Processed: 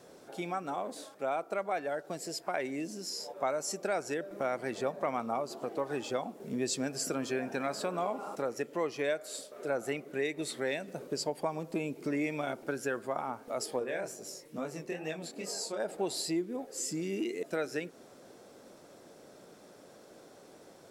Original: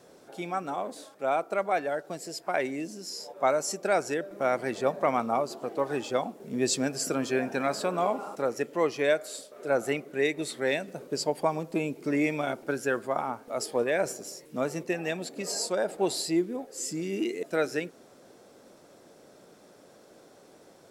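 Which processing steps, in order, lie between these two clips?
compressor 2:1, threshold -34 dBFS, peak gain reduction 8.5 dB; 13.79–15.8 chorus 2.3 Hz, delay 19 ms, depth 6.2 ms

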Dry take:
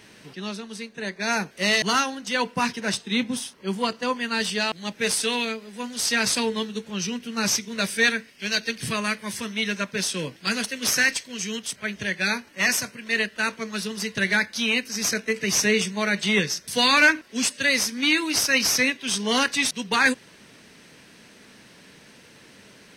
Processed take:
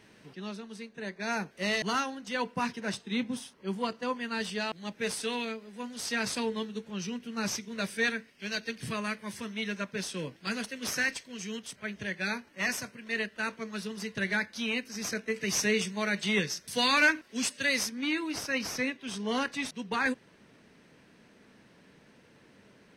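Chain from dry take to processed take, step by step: high shelf 2400 Hz -7 dB, from 15.33 s -2 dB, from 17.89 s -12 dB; gain -6 dB

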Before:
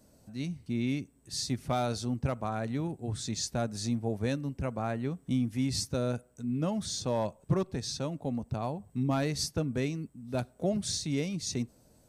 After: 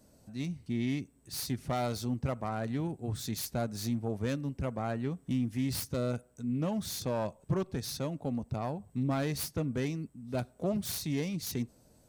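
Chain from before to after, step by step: self-modulated delay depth 0.14 ms; in parallel at +1 dB: limiter -24 dBFS, peak gain reduction 7.5 dB; on the sum: gain -7 dB

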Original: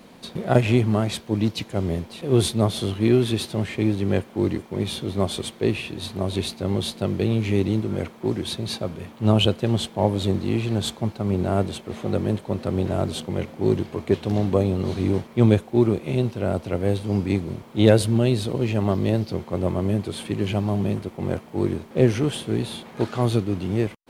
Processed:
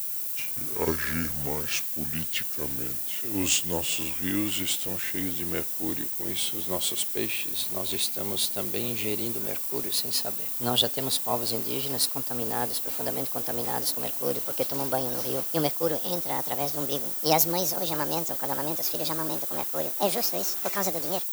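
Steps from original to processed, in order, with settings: speed glide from 61% -> 165%; added noise blue -44 dBFS; RIAA curve recording; gain -5 dB

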